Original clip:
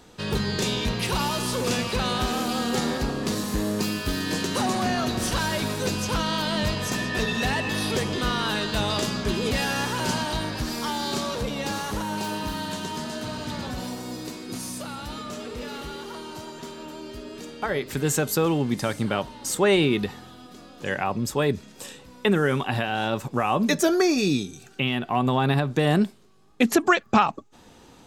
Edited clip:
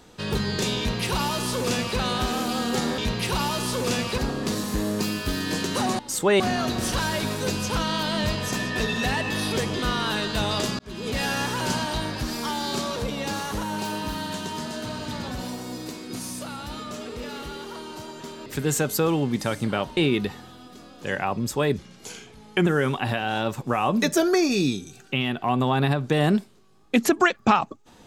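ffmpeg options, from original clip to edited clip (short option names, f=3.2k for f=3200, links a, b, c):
-filter_complex "[0:a]asplit=10[a][b][c][d][e][f][g][h][i][j];[a]atrim=end=2.982[k];[b]atrim=start=0.778:end=1.982[l];[c]atrim=start=2.978:end=4.792[m];[d]atrim=start=19.348:end=19.762[n];[e]atrim=start=4.788:end=9.18,asetpts=PTS-STARTPTS,afade=t=out:st=4.388:d=0.004:c=hsin[o];[f]atrim=start=9.18:end=16.852,asetpts=PTS-STARTPTS,afade=t=in:d=0.47[p];[g]atrim=start=17.838:end=19.352[q];[h]atrim=start=19.758:end=21.574[r];[i]atrim=start=21.57:end=22.33,asetpts=PTS-STARTPTS,asetrate=37926,aresample=44100,atrim=end_sample=38972,asetpts=PTS-STARTPTS[s];[j]atrim=start=22.326[t];[k][l]acrossfade=d=0.004:c1=hsin:c2=hsin[u];[u][m]acrossfade=d=0.004:c1=hsin:c2=hsin[v];[v][n]acrossfade=d=0.004:c1=hsin:c2=hsin[w];[o][p]concat=n=2:v=0:a=1[x];[w][x]acrossfade=d=0.004:c1=hsin:c2=hsin[y];[y][q]acrossfade=d=0.004:c1=hsin:c2=hsin[z];[z][r]acrossfade=d=0.004:c1=hsin:c2=hsin[aa];[aa][s]acrossfade=d=0.004:c1=hsin:c2=hsin[ab];[ab][t]acrossfade=d=0.004:c1=hsin:c2=hsin"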